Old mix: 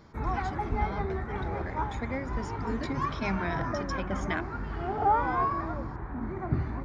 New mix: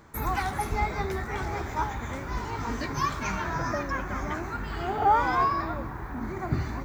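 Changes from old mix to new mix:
speech -6.5 dB; background: remove tape spacing loss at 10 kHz 34 dB

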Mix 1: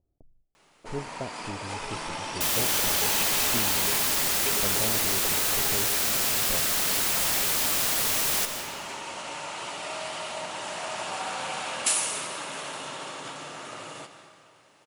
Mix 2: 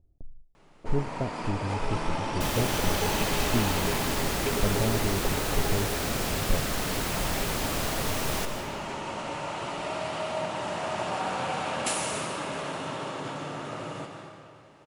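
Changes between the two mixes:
first sound: send +6.5 dB; master: add tilt EQ -3 dB/octave

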